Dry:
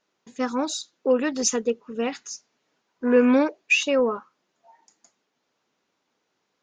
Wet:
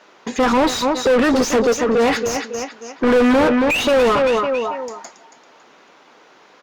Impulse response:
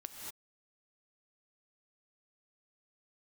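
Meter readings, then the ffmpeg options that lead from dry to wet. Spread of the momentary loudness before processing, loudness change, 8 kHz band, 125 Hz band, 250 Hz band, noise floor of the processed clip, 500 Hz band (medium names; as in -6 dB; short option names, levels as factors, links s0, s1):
16 LU, +6.5 dB, +2.0 dB, no reading, +6.5 dB, -50 dBFS, +8.5 dB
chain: -filter_complex "[0:a]aecho=1:1:277|554|831:0.2|0.0619|0.0192,asplit=2[s0][s1];[s1]highpass=f=720:p=1,volume=79.4,asoftclip=type=tanh:threshold=0.447[s2];[s0][s2]amix=inputs=2:normalize=0,lowpass=f=1400:p=1,volume=0.501" -ar 48000 -c:a libopus -b:a 64k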